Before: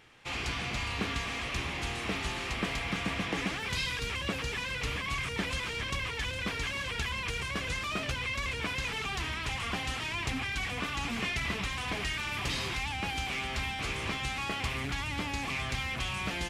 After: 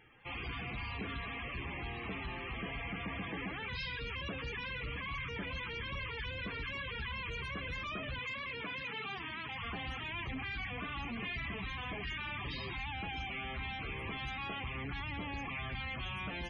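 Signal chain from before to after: treble shelf 3.3 kHz -2.5 dB; saturation -33.5 dBFS, distortion -11 dB; 8.19–9.59 s: high-pass 150 Hz 12 dB/octave; loudest bins only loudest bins 64; trim -1.5 dB

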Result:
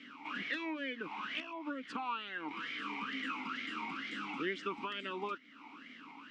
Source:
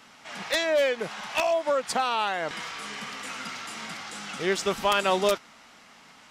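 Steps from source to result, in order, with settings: peaking EQ 930 Hz +4 dB 2.7 oct; compression 3:1, threshold -35 dBFS, peak gain reduction 14 dB; distance through air 54 m; talking filter i-u 2.2 Hz; trim +11.5 dB

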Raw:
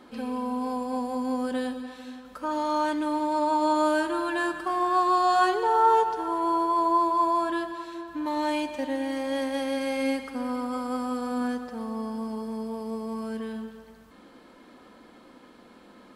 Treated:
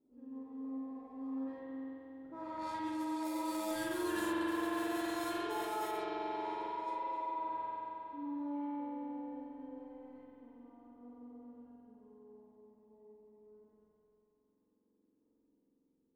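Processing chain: CVSD coder 64 kbps; Doppler pass-by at 4.14 s, 16 m/s, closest 2.5 m; LFO notch square 3.1 Hz 700–2000 Hz; in parallel at -10 dB: sample-rate reducer 1.5 kHz, jitter 0%; on the sum: pre-emphasis filter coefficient 0.8; small resonant body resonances 300/440/880/1900 Hz, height 8 dB, ringing for 60 ms; level-controlled noise filter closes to 420 Hz, open at -48 dBFS; spring tank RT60 3.6 s, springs 45 ms, chirp 80 ms, DRR -7.5 dB; reverse; compression 5:1, threshold -50 dBFS, peak gain reduction 18.5 dB; reverse; trim +14.5 dB

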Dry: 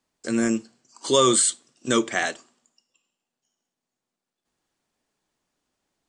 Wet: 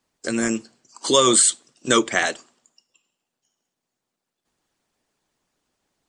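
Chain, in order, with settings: harmonic-percussive split percussive +8 dB; trim -1.5 dB

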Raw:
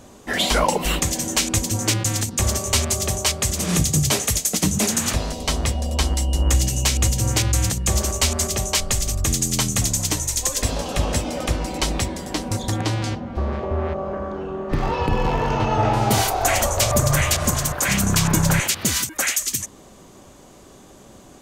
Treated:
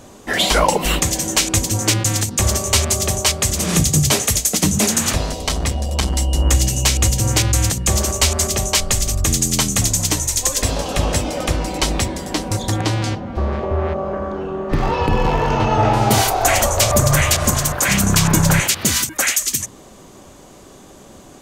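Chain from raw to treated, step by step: hum notches 60/120/180/240 Hz; 5.41–6.13 s: transformer saturation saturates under 200 Hz; trim +4 dB

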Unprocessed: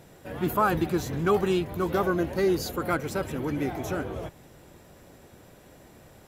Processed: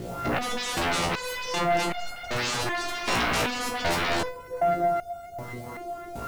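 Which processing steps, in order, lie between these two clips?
sorted samples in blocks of 64 samples; on a send: feedback echo behind a low-pass 589 ms, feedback 47%, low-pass 790 Hz, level -14 dB; on the sum: LFO low-pass saw up 3.8 Hz 360–2200 Hz; peak limiter -17.5 dBFS, peak gain reduction 9.5 dB; 1.45–2.24 s: compression 8:1, threshold -27 dBFS, peak gain reduction 6 dB; sine folder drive 17 dB, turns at -17.5 dBFS; bit crusher 7-bit; resonator arpeggio 2.6 Hz 60–710 Hz; trim +3.5 dB

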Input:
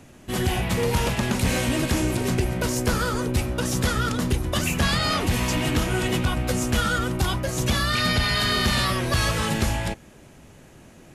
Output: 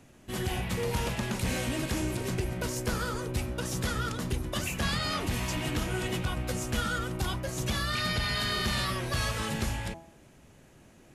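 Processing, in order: de-hum 82.74 Hz, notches 16; trim -7.5 dB

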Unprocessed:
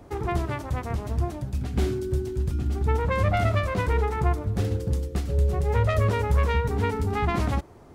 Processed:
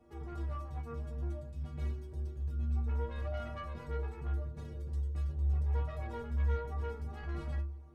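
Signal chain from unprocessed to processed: saturation -22.5 dBFS, distortion -11 dB; treble shelf 3.8 kHz -9 dB; inharmonic resonator 70 Hz, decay 0.84 s, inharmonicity 0.03

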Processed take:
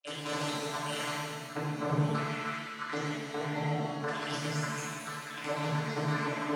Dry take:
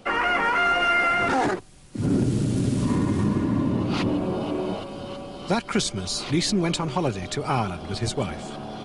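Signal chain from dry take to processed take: random holes in the spectrogram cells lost 83%; peaking EQ 1.4 kHz +12.5 dB 1.1 oct; wavefolder -27.5 dBFS; tremolo 20 Hz, depth 76%; in parallel at -9.5 dB: sample-rate reducer 2.5 kHz, jitter 0%; on the sum: vocoder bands 32, saw 109 Hz; speed mistake 33 rpm record played at 45 rpm; pitch-shifted reverb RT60 1.6 s, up +7 st, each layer -8 dB, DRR -7.5 dB

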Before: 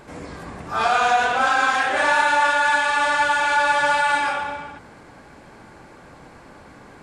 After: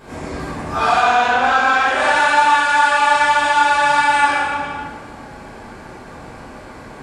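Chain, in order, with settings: in parallel at -1.5 dB: compression, threshold -31 dBFS, peak gain reduction 16 dB; 0.98–1.87 s: on the sum: distance through air 69 m; plate-style reverb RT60 1.2 s, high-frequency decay 0.9×, DRR -10 dB; trim -7 dB

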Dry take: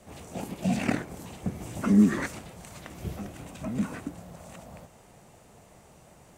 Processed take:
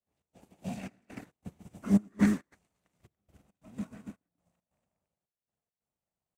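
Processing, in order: on a send: loudspeakers at several distances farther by 12 m -10 dB, 49 m -8 dB, 65 m -6 dB, 98 m -4 dB; on the sum: waveshaping leveller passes 1; trance gate "xx.xxxxx.." 137 bpm -12 dB; upward expansion 2.5:1, over -39 dBFS; trim -3.5 dB

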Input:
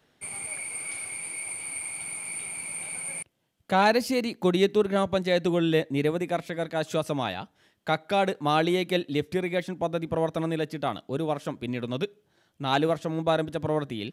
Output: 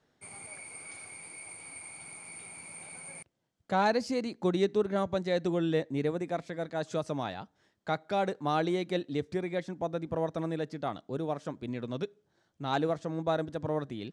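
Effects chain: low-pass 8 kHz 24 dB/octave; peaking EQ 2.8 kHz -7 dB 0.89 oct; trim -5 dB

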